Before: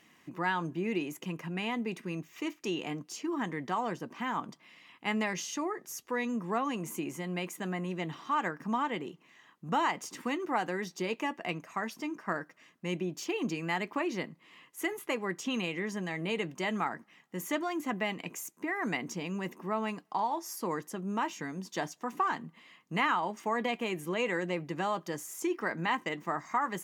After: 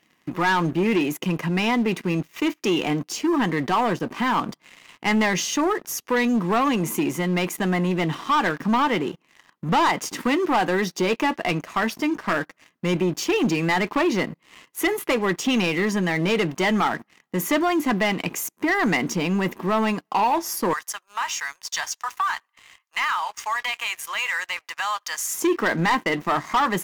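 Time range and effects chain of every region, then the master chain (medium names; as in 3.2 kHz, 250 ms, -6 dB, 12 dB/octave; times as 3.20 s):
20.73–25.35 s: high-pass 1 kHz 24 dB/octave + compression 2:1, threshold -38 dBFS + dynamic bell 6.3 kHz, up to +7 dB, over -59 dBFS, Q 1
whole clip: peaking EQ 7.7 kHz -4 dB 0.77 oct; waveshaping leveller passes 3; trim +3 dB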